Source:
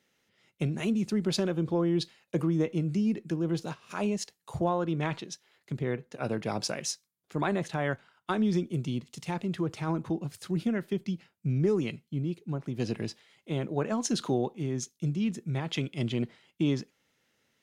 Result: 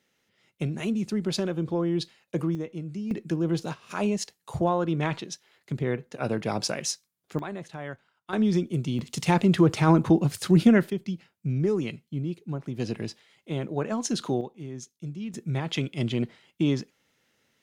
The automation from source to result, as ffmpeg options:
-af "asetnsamples=n=441:p=0,asendcmd='2.55 volume volume -6dB;3.11 volume volume 3.5dB;7.39 volume volume -7dB;8.33 volume volume 3.5dB;8.99 volume volume 11.5dB;10.9 volume volume 1dB;14.41 volume volume -6dB;15.34 volume volume 3dB',volume=0.5dB"

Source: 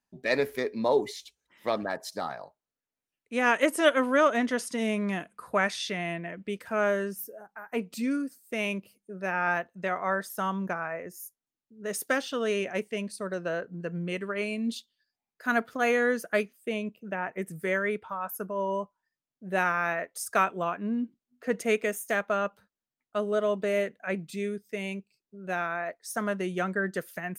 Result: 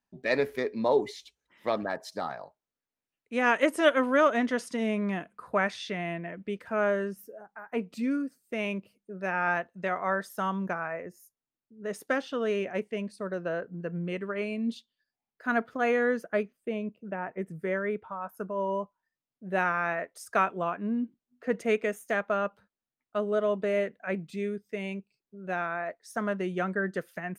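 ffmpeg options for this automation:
-af "asetnsamples=n=441:p=0,asendcmd='4.77 lowpass f 2300;9.21 lowpass f 4600;11.01 lowpass f 1900;16.24 lowpass f 1100;18.37 lowpass f 2600',lowpass=f=4k:p=1"

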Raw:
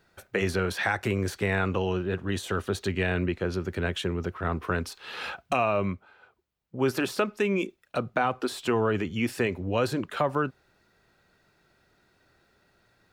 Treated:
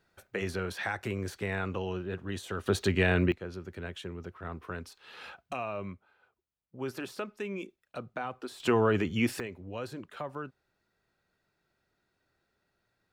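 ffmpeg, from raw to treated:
-af "asetnsamples=n=441:p=0,asendcmd='2.66 volume volume 1.5dB;3.32 volume volume -11dB;8.6 volume volume 0dB;9.4 volume volume -12.5dB',volume=-7dB"

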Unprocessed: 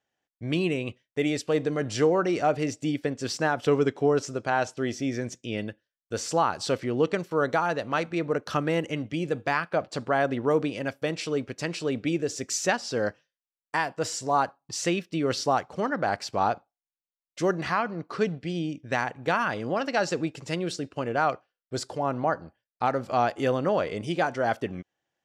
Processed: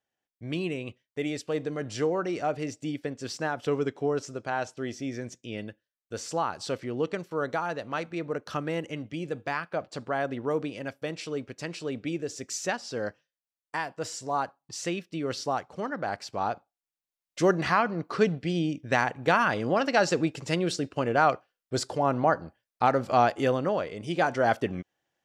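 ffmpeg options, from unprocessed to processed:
-af "volume=11dB,afade=t=in:st=16.43:d=1:silence=0.421697,afade=t=out:st=23.18:d=0.78:silence=0.354813,afade=t=in:st=23.96:d=0.35:silence=0.375837"

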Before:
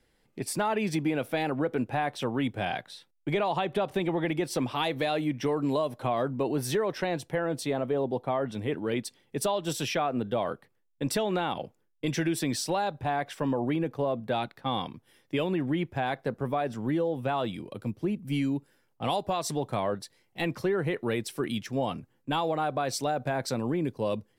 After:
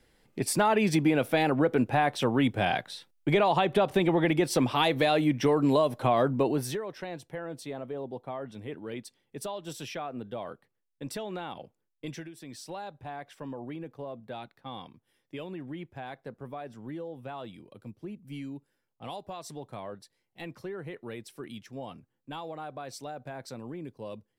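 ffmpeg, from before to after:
-af "volume=13dB,afade=t=out:st=6.37:d=0.44:silence=0.237137,afade=t=out:st=12.08:d=0.24:silence=0.266073,afade=t=in:st=12.32:d=0.42:silence=0.354813"

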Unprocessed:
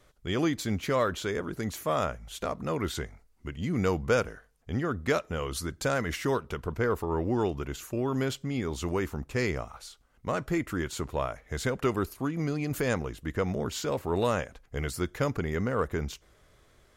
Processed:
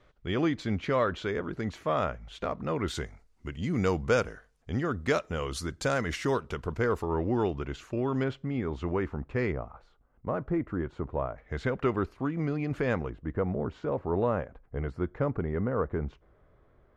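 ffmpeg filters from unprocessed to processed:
-af "asetnsamples=n=441:p=0,asendcmd='2.88 lowpass f 7900;7.07 lowpass f 3800;8.24 lowpass f 2000;9.52 lowpass f 1100;11.38 lowpass f 2500;13.1 lowpass f 1200',lowpass=3.3k"

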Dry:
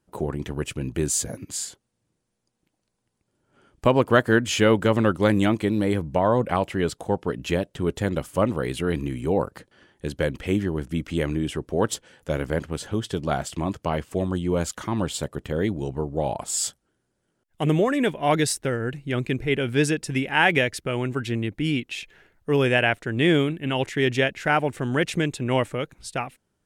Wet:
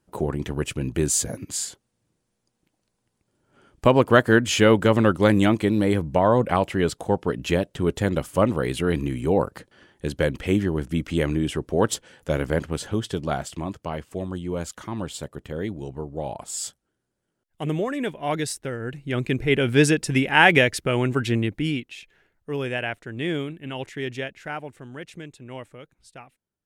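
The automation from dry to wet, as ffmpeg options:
-af "volume=11dB,afade=t=out:st=12.74:d=1.05:silence=0.446684,afade=t=in:st=18.75:d=0.93:silence=0.354813,afade=t=out:st=21.36:d=0.56:silence=0.266073,afade=t=out:st=23.92:d=1:silence=0.421697"

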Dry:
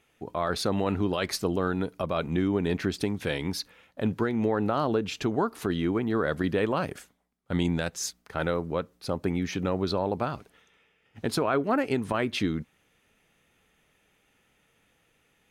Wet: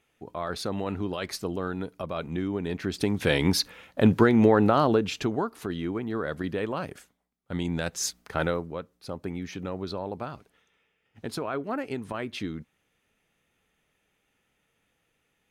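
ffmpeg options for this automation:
-af "volume=17dB,afade=t=in:st=2.82:d=0.65:silence=0.251189,afade=t=out:st=4.34:d=1.17:silence=0.251189,afade=t=in:st=7.66:d=0.57:silence=0.354813,afade=t=out:st=8.23:d=0.48:silence=0.281838"

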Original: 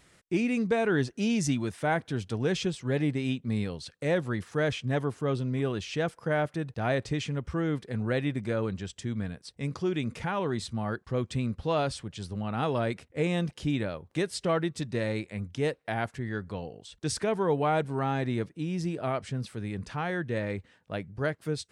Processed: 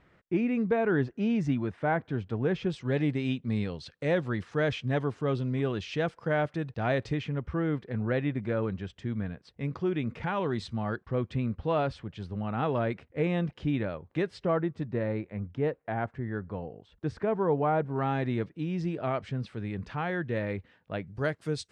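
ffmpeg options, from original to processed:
-af "asetnsamples=n=441:p=0,asendcmd='2.7 lowpass f 4400;7.14 lowpass f 2500;10.23 lowpass f 4200;11.03 lowpass f 2500;14.44 lowpass f 1500;17.96 lowpass f 3400;21.07 lowpass f 8100',lowpass=1.9k"

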